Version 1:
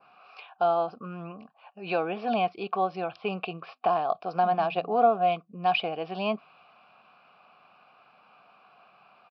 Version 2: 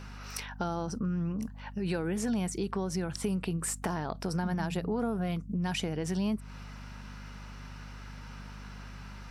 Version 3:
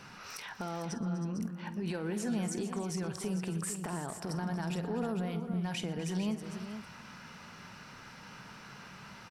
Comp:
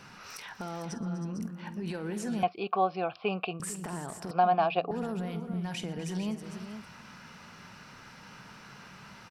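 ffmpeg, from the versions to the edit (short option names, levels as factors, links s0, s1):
-filter_complex "[0:a]asplit=2[s0][s1];[2:a]asplit=3[s2][s3][s4];[s2]atrim=end=2.432[s5];[s0]atrim=start=2.428:end=3.602[s6];[s3]atrim=start=3.598:end=4.312[s7];[s1]atrim=start=4.308:end=4.912[s8];[s4]atrim=start=4.908[s9];[s5][s6]acrossfade=d=0.004:c1=hsin:c2=hsin[s10];[s10][s7]acrossfade=d=0.004:c1=hsin:c2=hsin[s11];[s11][s8]acrossfade=d=0.004:c1=hsin:c2=hsin[s12];[s12][s9]acrossfade=d=0.004:c1=hsin:c2=hsin"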